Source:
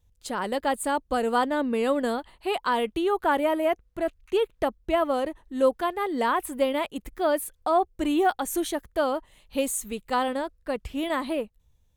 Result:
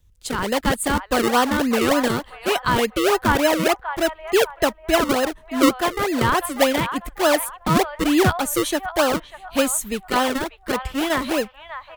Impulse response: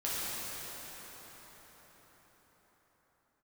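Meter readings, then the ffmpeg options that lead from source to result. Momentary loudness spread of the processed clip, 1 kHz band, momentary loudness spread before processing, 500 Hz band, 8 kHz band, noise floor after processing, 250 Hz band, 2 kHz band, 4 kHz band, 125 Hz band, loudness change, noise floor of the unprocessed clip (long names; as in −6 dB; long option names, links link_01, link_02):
7 LU, +4.5 dB, 8 LU, +4.5 dB, +9.5 dB, −49 dBFS, +7.0 dB, +9.5 dB, +11.0 dB, can't be measured, +6.0 dB, −66 dBFS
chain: -filter_complex "[0:a]acrossover=split=250|860|5100[link_01][link_02][link_03][link_04];[link_02]acrusher=samples=37:mix=1:aa=0.000001:lfo=1:lforange=37:lforate=3.4[link_05];[link_03]asplit=2[link_06][link_07];[link_07]adelay=593,lowpass=frequency=1300:poles=1,volume=-5dB,asplit=2[link_08][link_09];[link_09]adelay=593,lowpass=frequency=1300:poles=1,volume=0.45,asplit=2[link_10][link_11];[link_11]adelay=593,lowpass=frequency=1300:poles=1,volume=0.45,asplit=2[link_12][link_13];[link_13]adelay=593,lowpass=frequency=1300:poles=1,volume=0.45,asplit=2[link_14][link_15];[link_15]adelay=593,lowpass=frequency=1300:poles=1,volume=0.45,asplit=2[link_16][link_17];[link_17]adelay=593,lowpass=frequency=1300:poles=1,volume=0.45[link_18];[link_06][link_08][link_10][link_12][link_14][link_16][link_18]amix=inputs=7:normalize=0[link_19];[link_01][link_05][link_19][link_04]amix=inputs=4:normalize=0,volume=7dB"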